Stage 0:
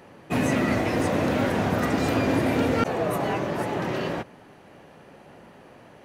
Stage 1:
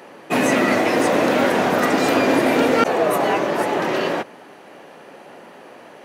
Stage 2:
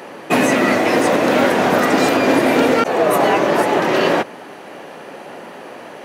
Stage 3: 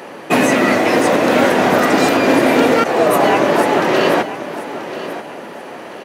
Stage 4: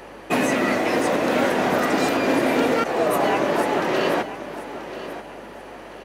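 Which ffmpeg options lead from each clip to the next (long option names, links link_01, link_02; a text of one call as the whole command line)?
ffmpeg -i in.wav -af "highpass=290,volume=8.5dB" out.wav
ffmpeg -i in.wav -af "alimiter=limit=-12dB:level=0:latency=1:release=404,volume=7.5dB" out.wav
ffmpeg -i in.wav -af "aecho=1:1:985|1970|2955:0.224|0.0739|0.0244,volume=1.5dB" out.wav
ffmpeg -i in.wav -af "aeval=exprs='val(0)+0.00501*(sin(2*PI*50*n/s)+sin(2*PI*2*50*n/s)/2+sin(2*PI*3*50*n/s)/3+sin(2*PI*4*50*n/s)/4+sin(2*PI*5*50*n/s)/5)':channel_layout=same,volume=-7.5dB" out.wav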